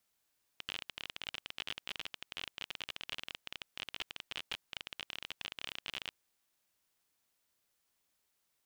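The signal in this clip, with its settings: random clicks 30/s -23 dBFS 5.51 s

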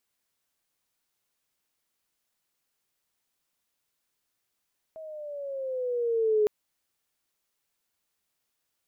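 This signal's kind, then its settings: gliding synth tone sine, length 1.51 s, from 644 Hz, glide -7.5 st, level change +20 dB, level -19 dB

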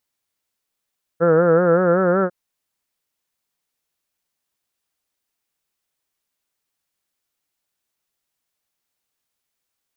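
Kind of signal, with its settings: formant-synthesis vowel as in heard, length 1.10 s, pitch 163 Hz, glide +2.5 st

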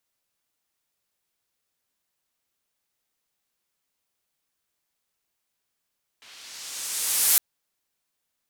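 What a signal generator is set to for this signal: swept filtered noise pink, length 1.16 s bandpass, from 2900 Hz, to 12000 Hz, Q 1.1, linear, gain ramp +35 dB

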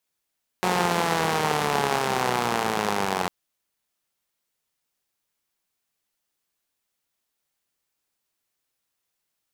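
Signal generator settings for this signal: four-cylinder engine model, changing speed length 2.65 s, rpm 5500, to 2700, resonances 210/430/770 Hz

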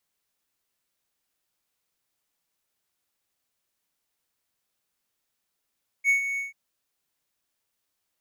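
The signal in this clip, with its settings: ADSR triangle 2220 Hz, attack 52 ms, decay 0.115 s, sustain -10 dB, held 0.34 s, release 0.148 s -14.5 dBFS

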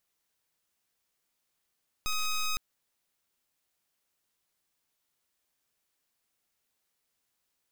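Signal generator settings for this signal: pulse 1260 Hz, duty 11% -29.5 dBFS 0.51 s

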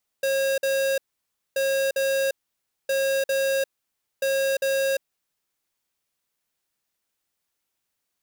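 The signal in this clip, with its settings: beep pattern square 542 Hz, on 0.35 s, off 0.05 s, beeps 2, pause 0.58 s, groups 4, -23 dBFS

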